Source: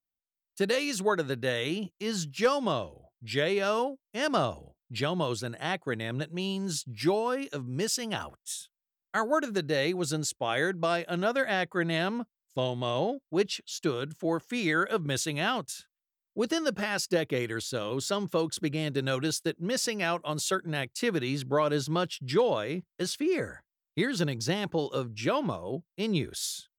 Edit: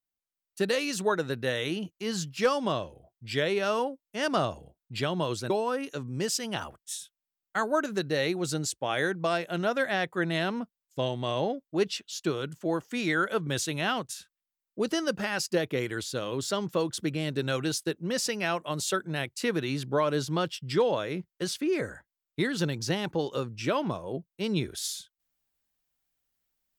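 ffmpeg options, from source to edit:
-filter_complex "[0:a]asplit=2[a][b];[a]atrim=end=5.502[c];[b]atrim=start=7.088[d];[c][d]acrossfade=d=0.004:c1=hsin:c2=hsin"

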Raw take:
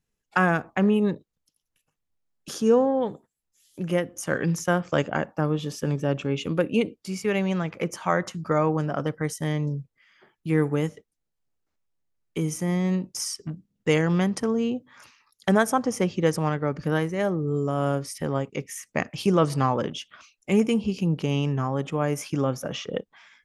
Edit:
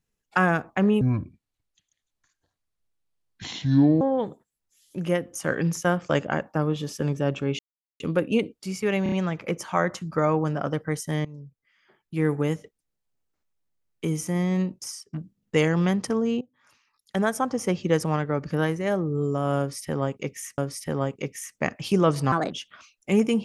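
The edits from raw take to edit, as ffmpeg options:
-filter_complex "[0:a]asplit=13[a][b][c][d][e][f][g][h][i][j][k][l][m];[a]atrim=end=1.014[n];[b]atrim=start=1.01:end=2.84,asetpts=PTS-STARTPTS,asetrate=26901,aresample=44100[o];[c]atrim=start=2.836:end=6.42,asetpts=PTS-STARTPTS,afade=t=out:st=3.58:d=0.004:c=hsin,apad=pad_dur=0.41[p];[d]atrim=start=6.42:end=7.482,asetpts=PTS-STARTPTS,afade=t=in:d=0.004:c=hsin[q];[e]atrim=start=7.448:end=7.482[r];[f]atrim=start=7.448:end=7.482[s];[g]atrim=start=7.448:end=9.58,asetpts=PTS-STARTPTS,afade=t=out:st=2.128:d=0.004:c=hsin:silence=0.133352[t];[h]atrim=start=9.58:end=13.46,asetpts=PTS-STARTPTS,afade=t=in:d=1.21:silence=0.133352,afade=t=out:st=3.38:d=0.5:silence=0.1[u];[i]atrim=start=13.46:end=14.74,asetpts=PTS-STARTPTS,afade=t=in:d=0.004:c=hsin:silence=0.1,afade=t=out:st=1.276:d=0.004:c=hsin:silence=0.105925[v];[j]atrim=start=14.74:end=18.912,asetpts=PTS-STARTPTS,afade=t=in:d=1.41:silence=0.105925[w];[k]atrim=start=17.918:end=19.664[x];[l]atrim=start=19.66:end=19.91,asetpts=PTS-STARTPTS,asetrate=58212,aresample=44100,atrim=end_sample=8352,asetpts=PTS-STARTPTS[y];[m]atrim=start=19.906[z];[n][o]acrossfade=d=0.004:c1=hsin:c2=hsin[aa];[p][q]concat=n=2:v=0:a=1[ab];[aa][ab]acrossfade=d=0.004:c1=hsin:c2=hsin[ac];[ac][r]acrossfade=d=0.004:c1=hsin:c2=hsin[ad];[ad][s]acrossfade=d=0.004:c1=hsin:c2=hsin[ae];[t][u][v][w]concat=n=4:v=0:a=1[af];[ae][af]acrossfade=d=0.004:c1=hsin:c2=hsin[ag];[ag][x]acrossfade=d=0.004:c1=hsin:c2=hsin[ah];[ah][y]acrossfade=d=0.004:c1=hsin:c2=hsin[ai];[ai][z]acrossfade=d=0.004:c1=hsin:c2=hsin"

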